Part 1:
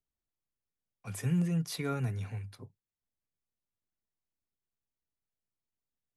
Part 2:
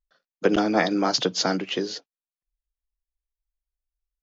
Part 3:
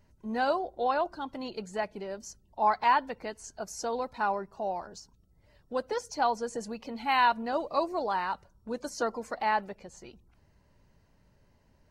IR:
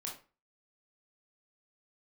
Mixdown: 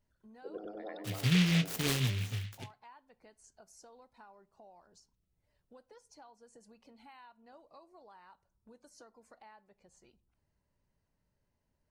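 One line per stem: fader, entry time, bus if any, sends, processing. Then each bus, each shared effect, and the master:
+1.0 dB, 0.00 s, send -15.5 dB, no echo send, low-pass 5.8 kHz; vibrato 4.5 Hz 45 cents; delay time shaken by noise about 2.6 kHz, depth 0.35 ms
-19.0 dB, 0.00 s, no send, echo send -5.5 dB, resonances exaggerated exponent 2; auto duck -20 dB, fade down 1.30 s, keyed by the first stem
-17.0 dB, 0.00 s, send -14.5 dB, no echo send, peaking EQ 9.4 kHz +7.5 dB 0.54 oct; compression 5:1, threshold -39 dBFS, peak gain reduction 17.5 dB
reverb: on, RT60 0.35 s, pre-delay 19 ms
echo: feedback delay 95 ms, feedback 45%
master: none

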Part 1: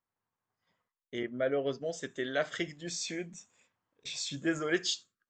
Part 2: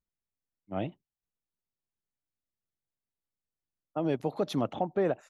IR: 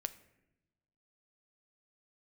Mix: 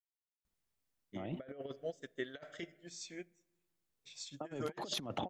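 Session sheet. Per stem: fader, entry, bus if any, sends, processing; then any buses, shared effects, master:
-0.5 dB, 0.00 s, send -9.5 dB, upward expansion 2.5:1, over -48 dBFS
-1.0 dB, 0.45 s, send -15 dB, peak limiter -29.5 dBFS, peak gain reduction 11.5 dB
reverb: on, pre-delay 7 ms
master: compressor with a negative ratio -41 dBFS, ratio -0.5

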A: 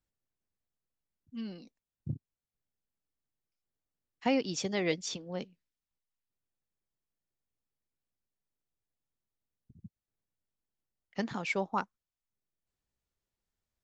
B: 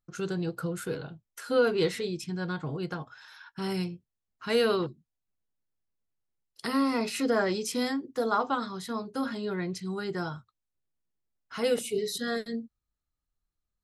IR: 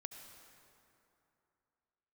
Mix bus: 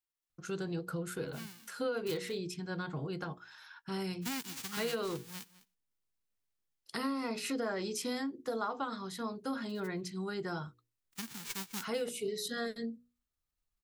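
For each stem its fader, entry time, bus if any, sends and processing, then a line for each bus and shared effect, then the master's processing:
-8.0 dB, 0.00 s, no send, echo send -18 dB, formants flattened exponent 0.1; peaking EQ 610 Hz -14.5 dB 0.45 oct
-3.5 dB, 0.30 s, no send, no echo send, hum notches 60/120/180/240/300/360/420/480 Hz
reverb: none
echo: delay 205 ms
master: compression 5:1, threshold -32 dBFS, peak gain reduction 9 dB

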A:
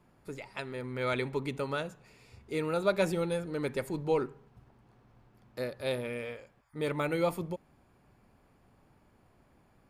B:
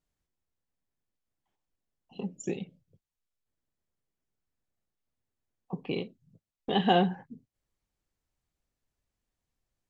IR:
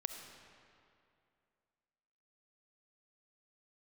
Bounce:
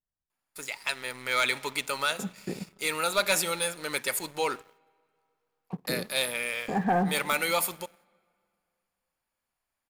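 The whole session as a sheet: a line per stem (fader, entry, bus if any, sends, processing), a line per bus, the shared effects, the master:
-1.5 dB, 0.30 s, send -12.5 dB, tilt EQ +4 dB/octave; gate -60 dBFS, range -14 dB; high-pass 230 Hz 6 dB/octave
-7.5 dB, 0.00 s, send -9 dB, elliptic low-pass 1.9 kHz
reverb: on, RT60 2.5 s, pre-delay 25 ms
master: peaking EQ 390 Hz -6 dB 1.1 oct; waveshaping leveller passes 2

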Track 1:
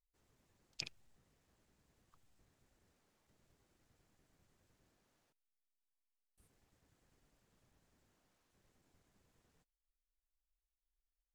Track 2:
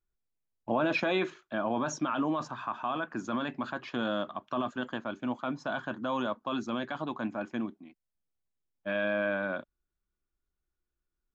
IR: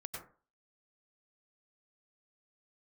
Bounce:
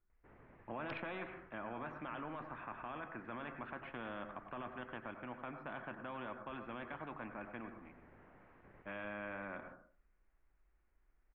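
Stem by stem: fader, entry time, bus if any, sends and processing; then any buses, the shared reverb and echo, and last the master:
+0.5 dB, 0.10 s, no send, none
-16.0 dB, 0.00 s, send -5.5 dB, none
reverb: on, RT60 0.40 s, pre-delay 87 ms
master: steep low-pass 2.2 kHz 36 dB/octave; spectrum-flattening compressor 2:1

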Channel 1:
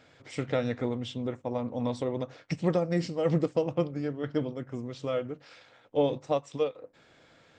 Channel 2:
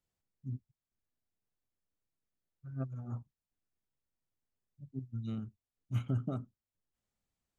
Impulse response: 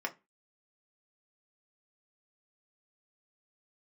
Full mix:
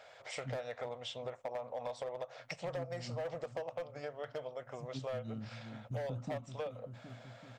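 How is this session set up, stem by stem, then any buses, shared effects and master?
+1.0 dB, 0.00 s, no send, no echo send, resonant low shelf 420 Hz -13.5 dB, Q 3; compression 1.5:1, threshold -32 dBFS, peak gain reduction 5.5 dB; hard clipper -27 dBFS, distortion -11 dB
-1.5 dB, 0.00 s, no send, echo send -13 dB, waveshaping leveller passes 1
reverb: none
echo: feedback delay 384 ms, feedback 59%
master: compression 3:1, threshold -40 dBFS, peak gain reduction 11.5 dB

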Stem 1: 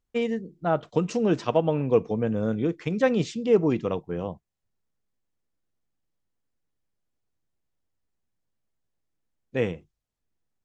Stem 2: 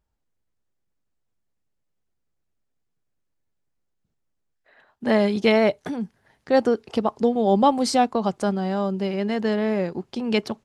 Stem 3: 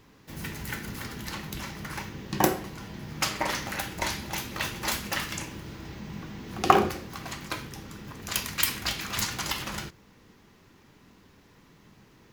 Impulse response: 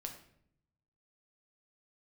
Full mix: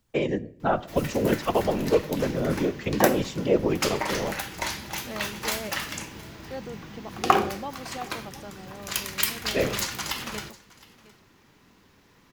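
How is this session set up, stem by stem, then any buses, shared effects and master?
-0.5 dB, 0.00 s, send -7.5 dB, no echo send, whisper effect; three bands compressed up and down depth 40%
-17.0 dB, 0.00 s, no send, echo send -18 dB, none
+0.5 dB, 0.60 s, no send, echo send -22.5 dB, none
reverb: on, RT60 0.65 s, pre-delay 6 ms
echo: delay 715 ms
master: bass shelf 440 Hz -4 dB

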